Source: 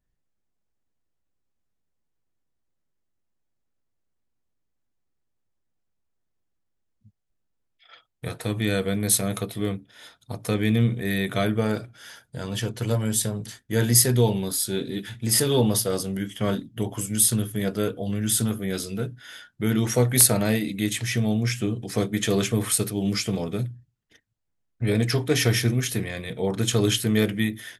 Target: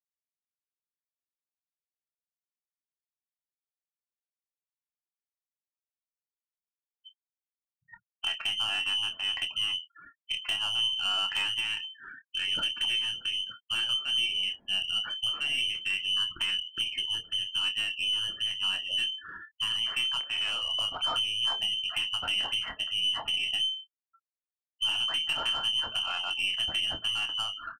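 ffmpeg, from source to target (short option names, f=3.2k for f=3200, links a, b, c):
-filter_complex "[0:a]afftfilt=real='re*gte(hypot(re,im),0.0126)':imag='im*gte(hypot(re,im),0.0126)':win_size=1024:overlap=0.75,acompressor=threshold=-27dB:ratio=12,lowpass=f=2.7k:t=q:w=0.5098,lowpass=f=2.7k:t=q:w=0.6013,lowpass=f=2.7k:t=q:w=0.9,lowpass=f=2.7k:t=q:w=2.563,afreqshift=-3200,aeval=exprs='(tanh(20*val(0)+0.15)-tanh(0.15))/20':c=same,asplit=2[a][b];[b]adelay=26,volume=-9.5dB[c];[a][c]amix=inputs=2:normalize=0,volume=3dB"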